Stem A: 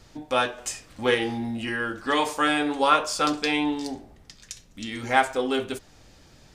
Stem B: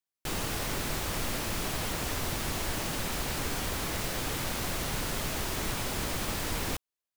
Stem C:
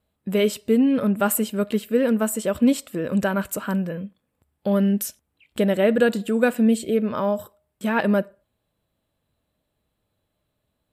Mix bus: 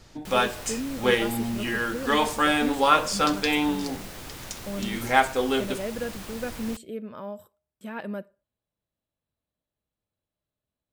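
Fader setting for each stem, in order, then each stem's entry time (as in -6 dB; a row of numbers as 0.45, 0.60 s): +0.5, -7.5, -14.0 dB; 0.00, 0.00, 0.00 s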